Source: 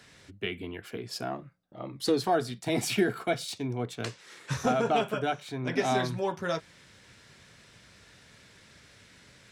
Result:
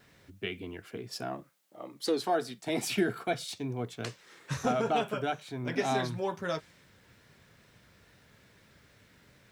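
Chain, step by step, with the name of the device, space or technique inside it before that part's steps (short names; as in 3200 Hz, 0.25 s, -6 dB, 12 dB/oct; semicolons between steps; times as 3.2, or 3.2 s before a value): plain cassette with noise reduction switched in (mismatched tape noise reduction decoder only; wow and flutter; white noise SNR 40 dB); 1.42–2.95 HPF 390 Hz -> 160 Hz 12 dB/oct; gain -2.5 dB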